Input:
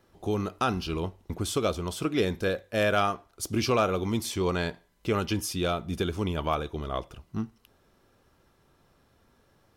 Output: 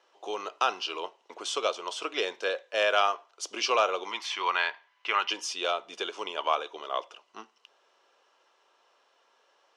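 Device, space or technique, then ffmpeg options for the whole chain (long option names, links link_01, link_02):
phone speaker on a table: -filter_complex "[0:a]asettb=1/sr,asplit=3[link_01][link_02][link_03];[link_01]atrim=end=4.114[link_04];[link_02]atrim=start=4.11:end=5.3,asetpts=PTS-STARTPTS,afade=type=in:duration=0.004:curve=qsin,afade=type=out:start_time=1.186:duration=0.004:curve=qsin,equalizer=frequency=125:width_type=o:width=1:gain=4,equalizer=frequency=250:width_type=o:width=1:gain=-4,equalizer=frequency=500:width_type=o:width=1:gain=-9,equalizer=frequency=1000:width_type=o:width=1:gain=5,equalizer=frequency=2000:width_type=o:width=1:gain=8,equalizer=frequency=8000:width_type=o:width=1:gain=-10[link_05];[link_03]atrim=start=5.296[link_06];[link_04][link_05]acrossfade=duration=0.004:curve1=hsin:curve2=qsin[link_07];[link_07][link_06]acrossfade=duration=0.004:curve1=qsin:curve2=hsin,highpass=frequency=470:width=0.5412,highpass=frequency=470:width=1.3066,equalizer=frequency=1000:width_type=q:width=4:gain=5,equalizer=frequency=2900:width_type=q:width=4:gain=8,equalizer=frequency=5900:width_type=q:width=4:gain=3,lowpass=frequency=7300:width=0.5412,lowpass=frequency=7300:width=1.3066"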